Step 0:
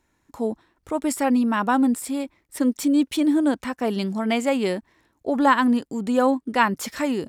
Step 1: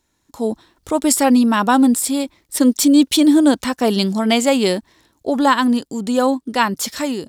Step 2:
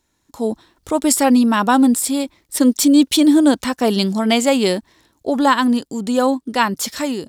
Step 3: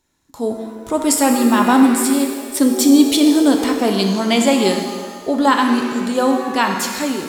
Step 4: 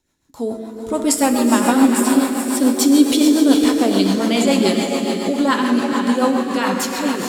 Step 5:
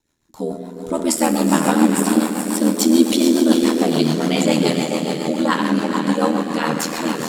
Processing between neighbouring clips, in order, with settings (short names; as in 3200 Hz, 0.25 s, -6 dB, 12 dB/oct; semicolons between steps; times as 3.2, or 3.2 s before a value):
AGC; resonant high shelf 2900 Hz +6 dB, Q 1.5; gain -1 dB
nothing audible
shimmer reverb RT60 1.6 s, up +7 st, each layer -8 dB, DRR 3.5 dB; gain -1 dB
diffused feedback echo 0.451 s, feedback 44%, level -5 dB; rotary speaker horn 7 Hz
ring modulator 40 Hz; gain +1.5 dB